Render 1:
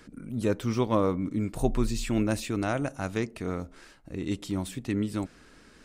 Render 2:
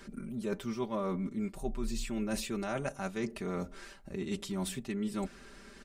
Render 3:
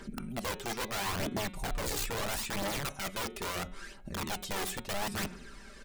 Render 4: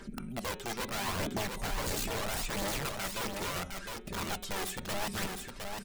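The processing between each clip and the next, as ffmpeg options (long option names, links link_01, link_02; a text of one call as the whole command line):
ffmpeg -i in.wav -af "equalizer=frequency=160:width=4.5:gain=-4.5,aecho=1:1:5.1:0.84,areverse,acompressor=threshold=-32dB:ratio=6,areverse" out.wav
ffmpeg -i in.wav -af "aeval=exprs='(mod(37.6*val(0)+1,2)-1)/37.6':channel_layout=same,aphaser=in_gain=1:out_gain=1:delay=2.6:decay=0.48:speed=0.75:type=triangular,bandreject=frequency=182.1:width_type=h:width=4,bandreject=frequency=364.2:width_type=h:width=4,bandreject=frequency=546.3:width_type=h:width=4,bandreject=frequency=728.4:width_type=h:width=4,bandreject=frequency=910.5:width_type=h:width=4,bandreject=frequency=1092.6:width_type=h:width=4,bandreject=frequency=1274.7:width_type=h:width=4,bandreject=frequency=1456.8:width_type=h:width=4,bandreject=frequency=1638.9:width_type=h:width=4,bandreject=frequency=1821:width_type=h:width=4,bandreject=frequency=2003.1:width_type=h:width=4,bandreject=frequency=2185.2:width_type=h:width=4,bandreject=frequency=2367.3:width_type=h:width=4,bandreject=frequency=2549.4:width_type=h:width=4,bandreject=frequency=2731.5:width_type=h:width=4,bandreject=frequency=2913.6:width_type=h:width=4,bandreject=frequency=3095.7:width_type=h:width=4,bandreject=frequency=3277.8:width_type=h:width=4,bandreject=frequency=3459.9:width_type=h:width=4,bandreject=frequency=3642:width_type=h:width=4,bandreject=frequency=3824.1:width_type=h:width=4,bandreject=frequency=4006.2:width_type=h:width=4,volume=1dB" out.wav
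ffmpeg -i in.wav -af "aecho=1:1:709:0.562,volume=-1dB" out.wav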